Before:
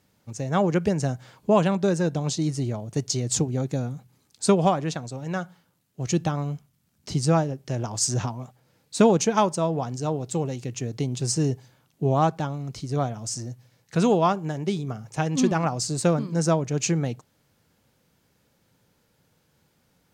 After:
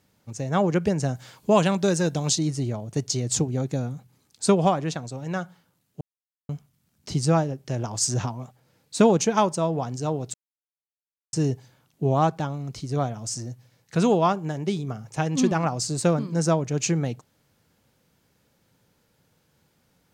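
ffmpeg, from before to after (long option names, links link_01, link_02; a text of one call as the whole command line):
ffmpeg -i in.wav -filter_complex "[0:a]asettb=1/sr,asplit=3[link_01][link_02][link_03];[link_01]atrim=end=1.154[link_04];[link_02]atrim=start=1.15:end=2.39,asetpts=PTS-STARTPTS,afade=type=in:duration=0.004:curve=qsin,afade=type=out:start_time=1.236:duration=0.004:curve=qsin,highshelf=frequency=2600:gain=9[link_05];[link_03]atrim=start=2.386[link_06];[link_04][link_05]acrossfade=duration=0.004:curve1=hsin:curve2=qsin[link_07];[link_07][link_06]acrossfade=duration=0.004:curve1=qsin:curve2=hsin,asplit=5[link_08][link_09][link_10][link_11][link_12];[link_08]atrim=end=6.01,asetpts=PTS-STARTPTS,afade=type=out:start_time=6.006:duration=0.004:curve=hsin[link_13];[link_09]atrim=start=6.01:end=6.49,asetpts=PTS-STARTPTS,volume=0[link_14];[link_10]atrim=start=6.49:end=10.34,asetpts=PTS-STARTPTS,afade=type=in:duration=0.004:curve=hsin,afade=type=out:start_time=3.846:duration=0.004:curve=hsin[link_15];[link_11]atrim=start=10.34:end=11.33,asetpts=PTS-STARTPTS,volume=0[link_16];[link_12]atrim=start=11.33,asetpts=PTS-STARTPTS,afade=type=in:duration=0.004:curve=hsin[link_17];[link_13][link_14][link_15][link_16][link_17]concat=n=5:v=0:a=1" out.wav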